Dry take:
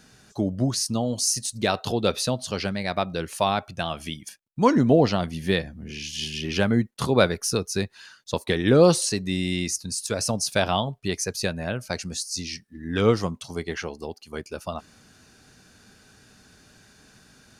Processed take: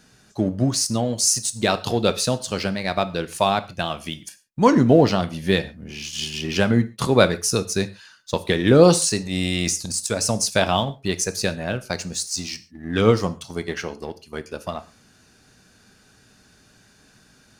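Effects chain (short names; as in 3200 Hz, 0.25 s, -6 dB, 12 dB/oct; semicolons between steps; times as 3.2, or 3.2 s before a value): in parallel at -3.5 dB: crossover distortion -36.5 dBFS; 9.21–9.94 on the sum: transient shaper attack -10 dB, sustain +9 dB; dynamic EQ 7500 Hz, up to +5 dB, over -43 dBFS, Q 3.2; non-linear reverb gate 0.16 s falling, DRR 11.5 dB; gain -1 dB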